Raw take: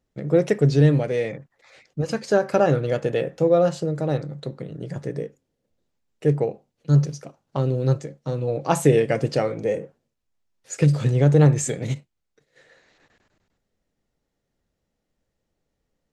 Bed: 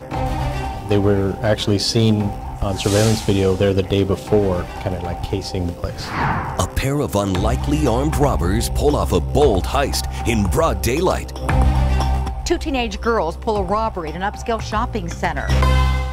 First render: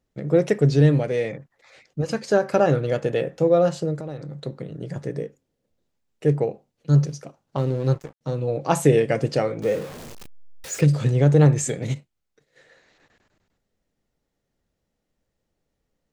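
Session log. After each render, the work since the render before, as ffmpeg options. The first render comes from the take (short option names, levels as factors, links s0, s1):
-filter_complex "[0:a]asplit=3[s0][s1][s2];[s0]afade=t=out:st=3.95:d=0.02[s3];[s1]acompressor=threshold=0.0316:ratio=4:attack=3.2:release=140:knee=1:detection=peak,afade=t=in:st=3.95:d=0.02,afade=t=out:st=4.4:d=0.02[s4];[s2]afade=t=in:st=4.4:d=0.02[s5];[s3][s4][s5]amix=inputs=3:normalize=0,asettb=1/sr,asplit=3[s6][s7][s8];[s6]atrim=end=7.584[s9];[s7]atrim=start=7.58:end=8.21,asetpts=PTS-STARTPTS,afade=t=in:d=0.004:c=qsin,afade=t=out:st=0.626:d=0.004:c=qsin,aeval=exprs='sgn(val(0))*max(abs(val(0))-0.0126,0)':c=same[s10];[s8]atrim=start=8.206[s11];[s9][s10]acrossfade=d=0.004:c1=hsin:c2=qsin[s12];[s12][s11]acrossfade=d=0.004:c1=qsin:c2=hsin,asettb=1/sr,asplit=3[s13][s14][s15];[s13]atrim=end=9.624[s16];[s14]atrim=start=9.62:end=10.81,asetpts=PTS-STARTPTS,afade=t=in:d=0.004:c=qsin,afade=t=out:st=1.186:d=0.004:c=qsin,aeval=exprs='val(0)+0.5*0.0237*sgn(val(0))':c=same[s17];[s15]atrim=start=10.806[s18];[s16][s17]acrossfade=d=0.004:c1=hsin:c2=qsin[s19];[s19][s18]acrossfade=d=0.004:c1=qsin:c2=hsin"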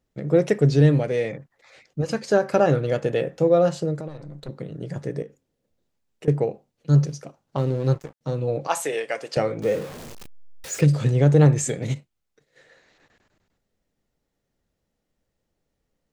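-filter_complex "[0:a]asettb=1/sr,asplit=3[s0][s1][s2];[s0]atrim=end=4.084[s3];[s1]atrim=start=4.08:end=4.49,asetpts=PTS-STARTPTS,afade=t=in:d=0.004:c=qsin,afade=t=out:st=0.406:d=0.004:c=qsin,aeval=exprs='(tanh(35.5*val(0)+0.7)-tanh(0.7))/35.5':c=same[s4];[s2]atrim=start=4.486[s5];[s3][s4]acrossfade=d=0.004:c1=hsin:c2=qsin[s6];[s6][s5]acrossfade=d=0.004:c1=qsin:c2=hsin,asettb=1/sr,asplit=3[s7][s8][s9];[s7]atrim=end=5.224[s10];[s8]atrim=start=5.22:end=6.28,asetpts=PTS-STARTPTS,afade=t=in:d=0.004:c=qsin,afade=t=out:st=1.056:d=0.004:c=qsin,acompressor=threshold=0.0178:ratio=5:attack=3.2:release=140:knee=1:detection=peak[s11];[s9]atrim=start=6.276[s12];[s10][s11]acrossfade=d=0.004:c1=hsin:c2=qsin[s13];[s13][s12]acrossfade=d=0.004:c1=qsin:c2=hsin,asettb=1/sr,asplit=3[s14][s15][s16];[s14]atrim=end=8.674[s17];[s15]atrim=start=8.67:end=9.37,asetpts=PTS-STARTPTS,afade=t=in:d=0.004:c=qsin,afade=t=out:st=0.696:d=0.004:c=qsin,highpass=730[s18];[s16]atrim=start=9.366[s19];[s17][s18]acrossfade=d=0.004:c1=hsin:c2=qsin[s20];[s20][s19]acrossfade=d=0.004:c1=qsin:c2=hsin"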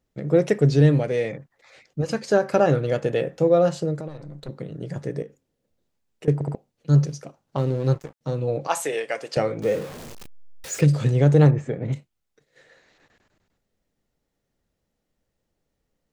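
-filter_complex "[0:a]asplit=3[s0][s1][s2];[s0]afade=t=out:st=11.5:d=0.02[s3];[s1]lowpass=1500,afade=t=in:st=11.5:d=0.02,afade=t=out:st=11.92:d=0.02[s4];[s2]afade=t=in:st=11.92:d=0.02[s5];[s3][s4][s5]amix=inputs=3:normalize=0,asplit=4[s6][s7][s8][s9];[s6]atrim=end=6.412[s10];[s7]atrim=start=6.338:end=6.412[s11];[s8]atrim=start=6.338:end=6.412[s12];[s9]atrim=start=6.548[s13];[s10][s11]acrossfade=d=0.004:c1=hsin:c2=hsin[s14];[s14][s12]acrossfade=d=0.004:c1=hsin:c2=hsin[s15];[s15][s13]acrossfade=d=0.004:c1=hsin:c2=hsin"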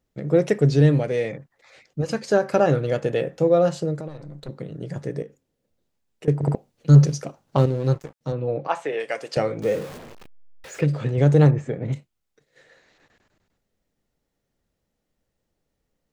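-filter_complex "[0:a]asettb=1/sr,asplit=3[s0][s1][s2];[s0]atrim=end=6.434[s3];[s1]atrim=start=6.43:end=7.66,asetpts=PTS-STARTPTS,afade=t=in:d=0.004:c=qsin,afade=t=out:st=1.226:d=0.004:c=qsin,acontrast=72[s4];[s2]atrim=start=7.656[s5];[s3][s4]acrossfade=d=0.004:c1=hsin:c2=qsin[s6];[s6][s5]acrossfade=d=0.004:c1=qsin:c2=hsin,asettb=1/sr,asplit=3[s7][s8][s9];[s7]atrim=end=8.324[s10];[s8]atrim=start=8.32:end=9,asetpts=PTS-STARTPTS,afade=t=in:d=0.004:c=qsin,afade=t=out:st=0.676:d=0.004:c=qsin,highpass=110,lowpass=2600[s11];[s9]atrim=start=8.996[s12];[s10][s11]acrossfade=d=0.004:c1=hsin:c2=qsin[s13];[s13][s12]acrossfade=d=0.004:c1=qsin:c2=hsin,asettb=1/sr,asplit=3[s14][s15][s16];[s14]atrim=end=9.984[s17];[s15]atrim=start=9.98:end=11.18,asetpts=PTS-STARTPTS,afade=t=in:d=0.004:c=qsin,afade=t=out:st=1.196:d=0.004:c=qsin,bass=f=250:g=-5,treble=f=4000:g=-13[s18];[s16]atrim=start=11.176[s19];[s17][s18]acrossfade=d=0.004:c1=hsin:c2=qsin[s20];[s20][s19]acrossfade=d=0.004:c1=qsin:c2=hsin"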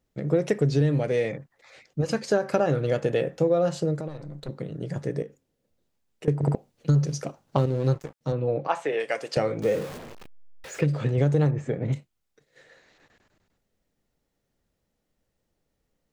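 -af "acompressor=threshold=0.126:ratio=6"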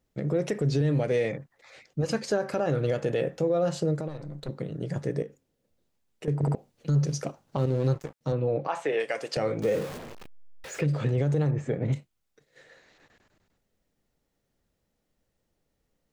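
-af "alimiter=limit=0.141:level=0:latency=1:release=43"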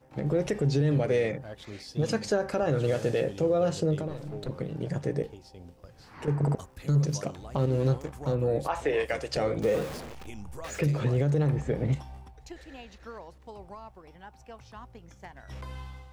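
-filter_complex "[1:a]volume=0.0531[s0];[0:a][s0]amix=inputs=2:normalize=0"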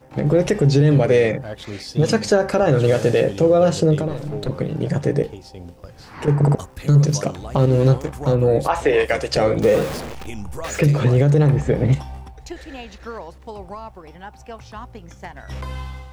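-af "volume=3.35"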